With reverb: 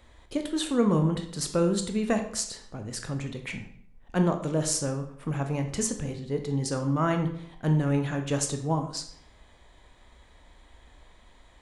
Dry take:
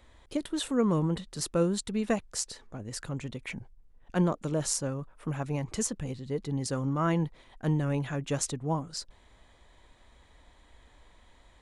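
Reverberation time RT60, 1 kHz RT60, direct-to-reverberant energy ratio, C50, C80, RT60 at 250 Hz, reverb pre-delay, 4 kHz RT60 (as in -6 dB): 0.65 s, 0.65 s, 5.0 dB, 9.5 dB, 12.5 dB, 0.65 s, 18 ms, 0.50 s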